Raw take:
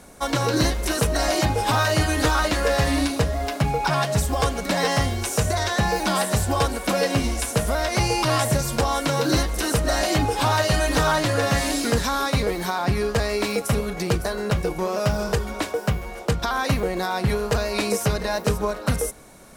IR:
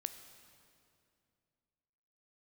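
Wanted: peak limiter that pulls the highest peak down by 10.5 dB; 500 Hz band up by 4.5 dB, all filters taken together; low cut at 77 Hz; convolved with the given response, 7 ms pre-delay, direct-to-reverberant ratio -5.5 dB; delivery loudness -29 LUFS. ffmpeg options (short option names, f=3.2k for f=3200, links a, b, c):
-filter_complex "[0:a]highpass=77,equalizer=f=500:t=o:g=5.5,alimiter=limit=-16.5dB:level=0:latency=1,asplit=2[a][b];[1:a]atrim=start_sample=2205,adelay=7[c];[b][c]afir=irnorm=-1:irlink=0,volume=7.5dB[d];[a][d]amix=inputs=2:normalize=0,volume=-10.5dB"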